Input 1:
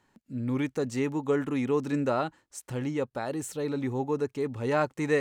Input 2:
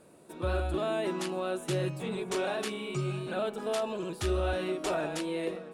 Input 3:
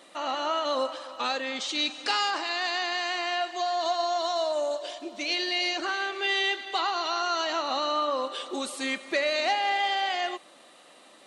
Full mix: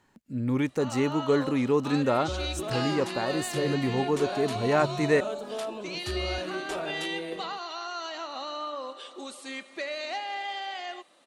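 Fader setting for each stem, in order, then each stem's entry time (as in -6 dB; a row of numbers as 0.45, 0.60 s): +2.5, -3.0, -8.0 dB; 0.00, 1.85, 0.65 s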